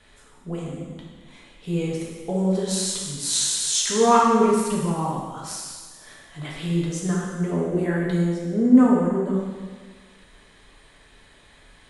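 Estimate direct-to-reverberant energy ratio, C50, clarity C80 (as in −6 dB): −4.0 dB, 0.0 dB, 2.5 dB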